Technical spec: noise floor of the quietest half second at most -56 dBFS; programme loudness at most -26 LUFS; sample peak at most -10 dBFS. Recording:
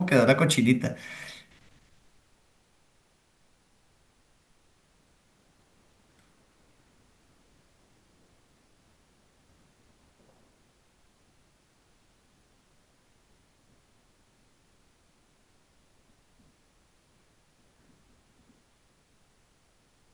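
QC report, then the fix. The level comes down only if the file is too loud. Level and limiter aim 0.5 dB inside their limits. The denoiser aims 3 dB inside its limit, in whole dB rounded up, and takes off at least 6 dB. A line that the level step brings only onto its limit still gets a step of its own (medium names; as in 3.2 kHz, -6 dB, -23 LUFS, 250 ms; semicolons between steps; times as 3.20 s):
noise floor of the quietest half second -66 dBFS: pass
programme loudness -24.5 LUFS: fail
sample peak -6.5 dBFS: fail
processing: trim -2 dB; peak limiter -10.5 dBFS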